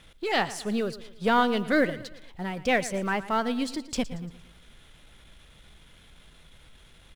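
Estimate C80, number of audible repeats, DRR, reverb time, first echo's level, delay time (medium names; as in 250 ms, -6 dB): no reverb, 3, no reverb, no reverb, -16.0 dB, 115 ms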